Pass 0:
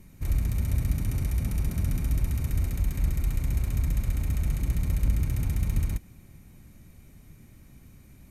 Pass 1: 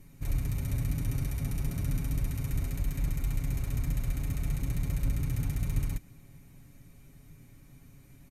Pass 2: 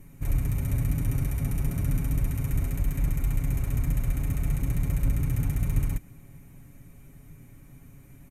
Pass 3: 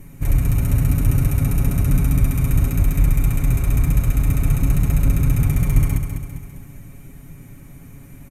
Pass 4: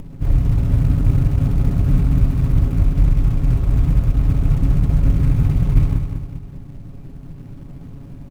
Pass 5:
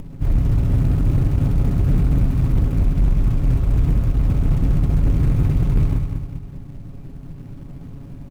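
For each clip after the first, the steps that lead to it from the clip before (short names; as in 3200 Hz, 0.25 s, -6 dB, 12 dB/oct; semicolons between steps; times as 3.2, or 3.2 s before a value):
comb 7.2 ms, depth 59%; gain -3.5 dB
bell 4500 Hz -9.5 dB 0.92 oct; gain +4.5 dB
feedback echo 0.2 s, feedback 48%, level -7 dB; gain +8.5 dB
median filter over 25 samples; upward compressor, threshold -29 dBFS; gain +1.5 dB
hard clip -11.5 dBFS, distortion -13 dB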